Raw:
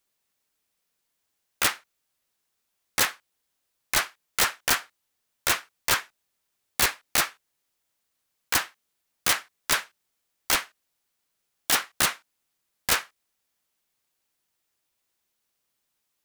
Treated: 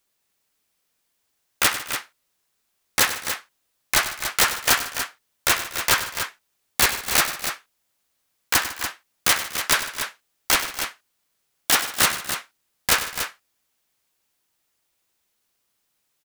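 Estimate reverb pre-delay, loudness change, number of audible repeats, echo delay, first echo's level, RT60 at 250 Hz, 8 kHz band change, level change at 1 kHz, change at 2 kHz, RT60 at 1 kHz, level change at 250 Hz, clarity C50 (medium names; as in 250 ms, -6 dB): no reverb, +3.5 dB, 4, 97 ms, -12.0 dB, no reverb, +5.0 dB, +5.0 dB, +5.0 dB, no reverb, +5.0 dB, no reverb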